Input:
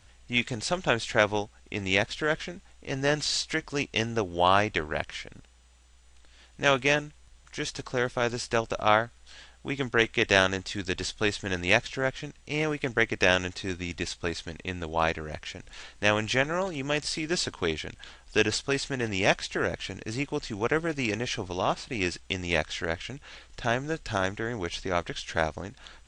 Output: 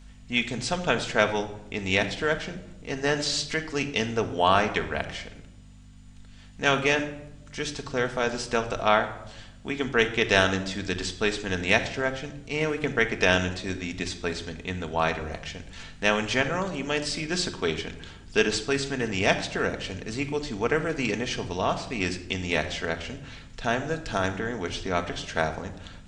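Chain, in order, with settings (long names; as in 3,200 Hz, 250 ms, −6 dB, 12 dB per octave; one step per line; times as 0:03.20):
mains hum 50 Hz, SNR 20 dB
rectangular room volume 3,000 cubic metres, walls furnished, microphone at 1.6 metres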